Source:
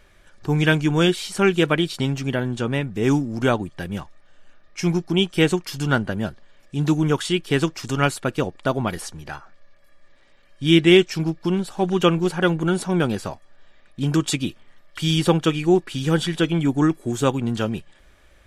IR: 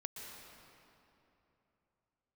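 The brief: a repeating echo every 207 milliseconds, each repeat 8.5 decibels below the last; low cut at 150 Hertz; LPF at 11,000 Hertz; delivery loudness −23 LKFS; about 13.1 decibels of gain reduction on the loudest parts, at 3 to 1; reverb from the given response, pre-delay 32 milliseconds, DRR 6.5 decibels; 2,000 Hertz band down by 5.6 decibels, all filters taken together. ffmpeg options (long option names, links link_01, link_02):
-filter_complex "[0:a]highpass=150,lowpass=11000,equalizer=frequency=2000:width_type=o:gain=-8,acompressor=threshold=-29dB:ratio=3,aecho=1:1:207|414|621|828:0.376|0.143|0.0543|0.0206,asplit=2[link_01][link_02];[1:a]atrim=start_sample=2205,adelay=32[link_03];[link_02][link_03]afir=irnorm=-1:irlink=0,volume=-4.5dB[link_04];[link_01][link_04]amix=inputs=2:normalize=0,volume=7.5dB"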